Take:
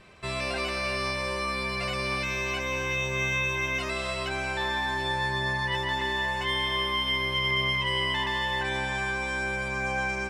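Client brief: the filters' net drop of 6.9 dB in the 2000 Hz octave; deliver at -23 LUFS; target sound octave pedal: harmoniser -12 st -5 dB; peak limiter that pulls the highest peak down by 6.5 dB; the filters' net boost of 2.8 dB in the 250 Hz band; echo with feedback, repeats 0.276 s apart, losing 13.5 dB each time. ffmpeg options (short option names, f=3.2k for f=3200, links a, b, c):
-filter_complex "[0:a]equalizer=f=250:t=o:g=4,equalizer=f=2k:t=o:g=-8.5,alimiter=level_in=0.5dB:limit=-24dB:level=0:latency=1,volume=-0.5dB,aecho=1:1:276|552:0.211|0.0444,asplit=2[a][b];[b]asetrate=22050,aresample=44100,atempo=2,volume=-5dB[c];[a][c]amix=inputs=2:normalize=0,volume=9dB"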